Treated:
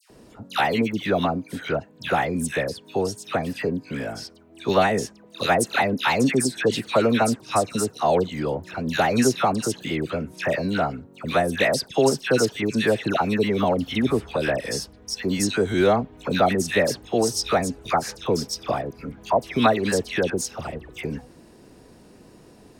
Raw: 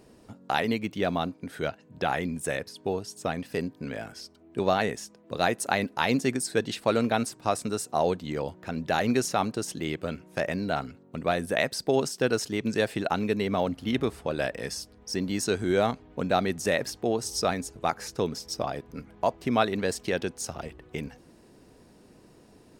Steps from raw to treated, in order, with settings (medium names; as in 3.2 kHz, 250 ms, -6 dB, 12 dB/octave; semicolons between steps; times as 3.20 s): phase dispersion lows, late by 103 ms, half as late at 1.6 kHz; trim +5.5 dB